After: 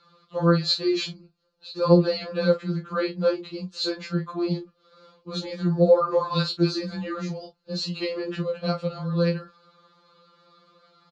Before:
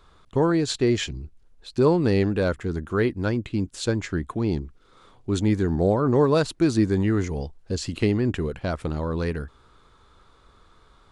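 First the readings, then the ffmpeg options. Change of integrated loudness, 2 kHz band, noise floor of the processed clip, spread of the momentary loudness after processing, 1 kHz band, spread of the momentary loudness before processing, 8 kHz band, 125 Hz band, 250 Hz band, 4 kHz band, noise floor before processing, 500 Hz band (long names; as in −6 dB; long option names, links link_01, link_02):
−1.0 dB, −3.0 dB, −66 dBFS, 14 LU, +0.5 dB, 11 LU, can't be measured, −2.5 dB, −3.0 dB, +5.5 dB, −57 dBFS, +0.5 dB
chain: -af "highpass=130,equalizer=frequency=320:width_type=q:width=4:gain=-8,equalizer=frequency=520:width_type=q:width=4:gain=7,equalizer=frequency=770:width_type=q:width=4:gain=-4,equalizer=frequency=1200:width_type=q:width=4:gain=8,equalizer=frequency=2000:width_type=q:width=4:gain=-8,equalizer=frequency=4200:width_type=q:width=4:gain=10,lowpass=frequency=5700:width=0.5412,lowpass=frequency=5700:width=1.3066,aecho=1:1:17|43:0.531|0.251,afftfilt=real='re*2.83*eq(mod(b,8),0)':imag='im*2.83*eq(mod(b,8),0)':win_size=2048:overlap=0.75"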